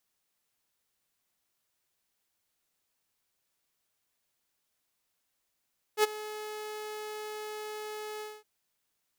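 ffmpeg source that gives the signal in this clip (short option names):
-f lavfi -i "aevalsrc='0.141*(2*mod(426*t,1)-1)':d=2.464:s=44100,afade=t=in:d=0.066,afade=t=out:st=0.066:d=0.02:silence=0.126,afade=t=out:st=2.24:d=0.224"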